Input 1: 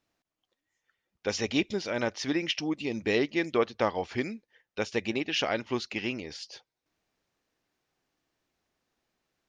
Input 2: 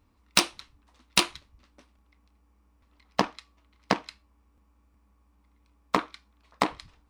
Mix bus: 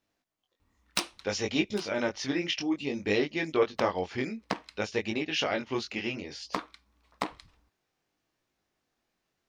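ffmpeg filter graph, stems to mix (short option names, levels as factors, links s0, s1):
-filter_complex "[0:a]flanger=delay=19:depth=3.7:speed=0.59,volume=1.33,asplit=2[s0][s1];[1:a]alimiter=limit=0.355:level=0:latency=1:release=418,adelay=600,volume=0.562[s2];[s1]apad=whole_len=339351[s3];[s2][s3]sidechaincompress=threshold=0.00891:ratio=12:attack=9.7:release=130[s4];[s0][s4]amix=inputs=2:normalize=0"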